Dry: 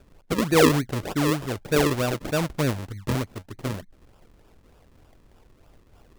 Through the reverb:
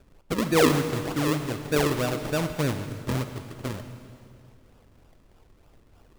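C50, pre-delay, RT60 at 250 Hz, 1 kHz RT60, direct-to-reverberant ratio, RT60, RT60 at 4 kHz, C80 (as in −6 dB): 8.5 dB, 34 ms, 2.6 s, 2.2 s, 8.0 dB, 2.3 s, 2.2 s, 9.5 dB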